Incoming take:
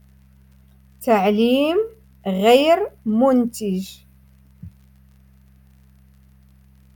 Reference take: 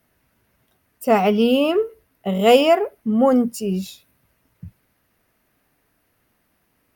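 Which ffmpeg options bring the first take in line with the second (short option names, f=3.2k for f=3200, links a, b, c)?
-af "adeclick=t=4,bandreject=f=65.9:t=h:w=4,bandreject=f=131.8:t=h:w=4,bandreject=f=197.7:t=h:w=4"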